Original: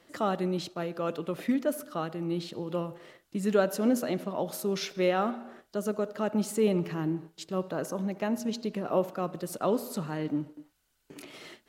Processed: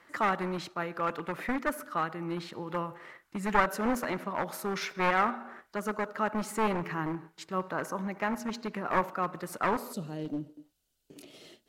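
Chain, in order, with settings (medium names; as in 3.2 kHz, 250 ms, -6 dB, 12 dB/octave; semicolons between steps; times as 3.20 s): one-sided wavefolder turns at -26 dBFS; high-order bell 1.4 kHz +10.5 dB, from 9.92 s -8 dB; trim -3.5 dB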